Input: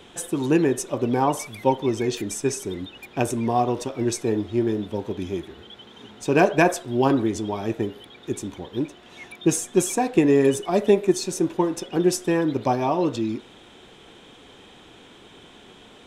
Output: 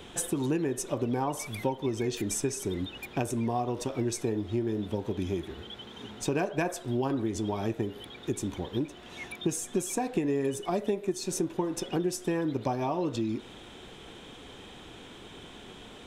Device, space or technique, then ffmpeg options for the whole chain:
ASMR close-microphone chain: -af "lowshelf=frequency=110:gain=7,acompressor=threshold=-27dB:ratio=5,highshelf=frequency=11000:gain=4"

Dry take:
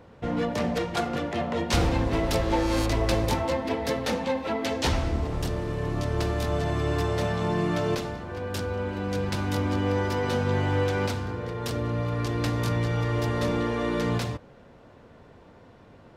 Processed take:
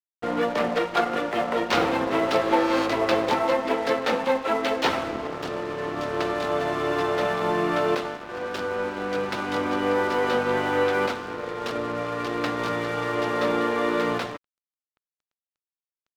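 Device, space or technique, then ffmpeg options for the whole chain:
pocket radio on a weak battery: -af "highpass=320,lowpass=3400,aeval=exprs='sgn(val(0))*max(abs(val(0))-0.00631,0)':channel_layout=same,equalizer=frequency=1300:width_type=o:width=0.27:gain=5,volume=6.5dB"

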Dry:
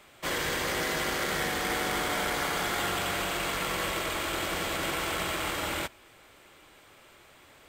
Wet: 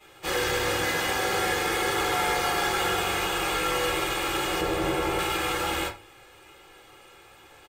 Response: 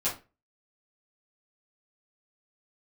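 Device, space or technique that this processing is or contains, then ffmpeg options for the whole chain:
microphone above a desk: -filter_complex "[0:a]aecho=1:1:2.4:0.58[link_01];[1:a]atrim=start_sample=2205[link_02];[link_01][link_02]afir=irnorm=-1:irlink=0,asettb=1/sr,asplit=3[link_03][link_04][link_05];[link_03]atrim=end=4.614[link_06];[link_04]atrim=start=4.61:end=5.19,asetpts=PTS-STARTPTS,afade=type=in:duration=0.004:curve=qsin,afade=type=out:start_time=0.576:duration=0.004:curve=qsin,tiltshelf=frequency=930:gain=5.5[link_07];[link_05]atrim=start=5.186[link_08];[link_06][link_07]acrossfade=duration=0.004:curve1=hsin:curve2=qsin[link_09];[link_09][link_08]acrossfade=duration=0.004:curve1=qsin:curve2=hsin,volume=-4.5dB"

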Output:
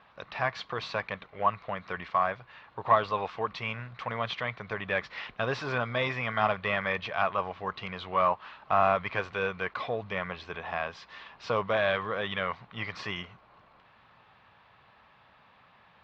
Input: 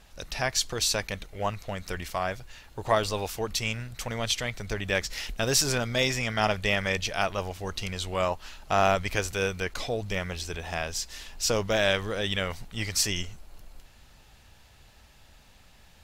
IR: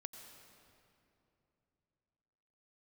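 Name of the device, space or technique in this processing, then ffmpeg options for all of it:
overdrive pedal into a guitar cabinet: -filter_complex "[0:a]asplit=2[link_01][link_02];[link_02]highpass=frequency=720:poles=1,volume=14dB,asoftclip=type=tanh:threshold=-7.5dB[link_03];[link_01][link_03]amix=inputs=2:normalize=0,lowpass=frequency=2100:poles=1,volume=-6dB,highpass=92,equalizer=frequency=120:width_type=q:width=4:gain=6,equalizer=frequency=180:width_type=q:width=4:gain=4,equalizer=frequency=330:width_type=q:width=4:gain=-3,equalizer=frequency=1100:width_type=q:width=4:gain=10,equalizer=frequency=2900:width_type=q:width=4:gain=-3,lowpass=frequency=3500:width=0.5412,lowpass=frequency=3500:width=1.3066,volume=-6dB"

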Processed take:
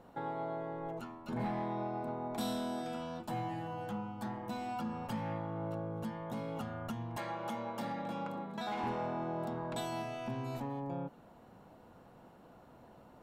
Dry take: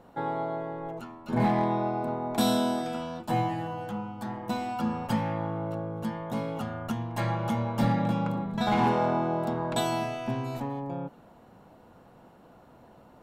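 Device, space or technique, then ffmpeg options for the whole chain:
soft clipper into limiter: -filter_complex "[0:a]asettb=1/sr,asplit=3[link_01][link_02][link_03];[link_01]atrim=end=7.174[link_04];[link_02]atrim=start=7.17:end=8.84,asetpts=PTS-STARTPTS,afade=type=in:duration=0.004:curve=qsin,afade=type=out:start_time=1.666:duration=0.004:curve=qsin,highpass=280[link_05];[link_03]atrim=start=8.836[link_06];[link_04][link_05]acrossfade=duration=0.004:curve1=hsin:curve2=qsin[link_07];[link_07][link_06]acrossfade=duration=0.004:curve1=qsin:curve2=hsin,asoftclip=type=tanh:threshold=-18.5dB,alimiter=level_in=3dB:limit=-24dB:level=0:latency=1:release=382,volume=-3dB,volume=-3.5dB"

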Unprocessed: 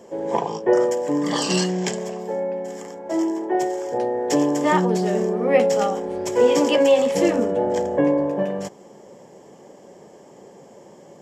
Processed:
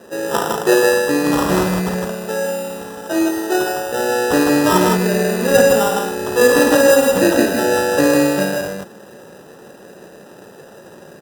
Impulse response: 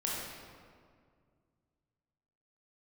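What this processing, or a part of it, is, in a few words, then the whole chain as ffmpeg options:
crushed at another speed: -af "asetrate=35280,aresample=44100,acrusher=samples=25:mix=1:aa=0.000001,asetrate=55125,aresample=44100,highpass=44,equalizer=frequency=3200:width_type=o:width=0.92:gain=-5.5,aecho=1:1:52.48|157.4:0.447|0.708,volume=3.5dB"

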